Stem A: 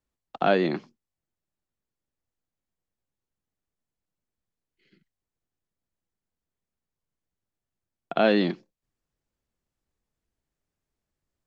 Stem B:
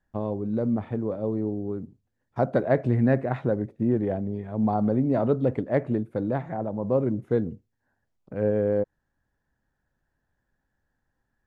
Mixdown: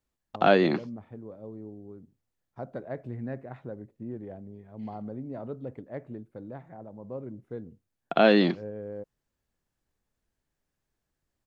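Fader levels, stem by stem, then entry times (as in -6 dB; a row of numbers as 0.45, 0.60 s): +1.5, -14.5 dB; 0.00, 0.20 s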